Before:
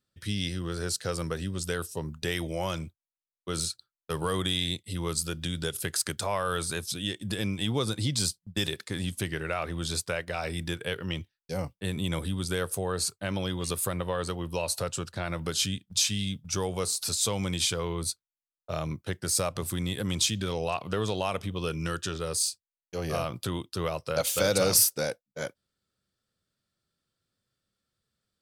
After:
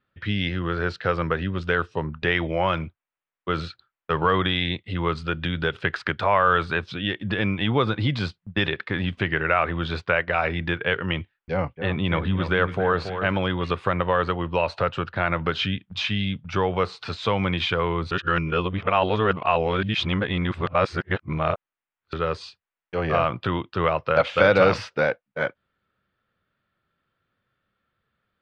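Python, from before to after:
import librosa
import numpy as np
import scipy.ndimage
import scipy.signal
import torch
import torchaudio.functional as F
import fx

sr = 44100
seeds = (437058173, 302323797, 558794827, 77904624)

y = fx.echo_alternate(x, sr, ms=279, hz=1800.0, feedback_pct=53, wet_db=-8.0, at=(11.2, 13.37))
y = fx.edit(y, sr, fx.reverse_span(start_s=18.11, length_s=4.02), tone=tone)
y = scipy.signal.sosfilt(scipy.signal.butter(4, 3000.0, 'lowpass', fs=sr, output='sos'), y)
y = fx.peak_eq(y, sr, hz=1400.0, db=7.5, octaves=2.1)
y = y * 10.0 ** (5.5 / 20.0)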